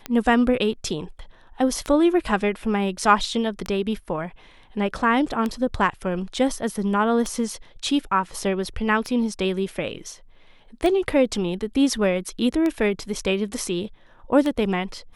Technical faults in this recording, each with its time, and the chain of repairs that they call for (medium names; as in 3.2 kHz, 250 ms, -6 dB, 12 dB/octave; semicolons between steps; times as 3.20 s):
tick 33 1/3 rpm -13 dBFS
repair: de-click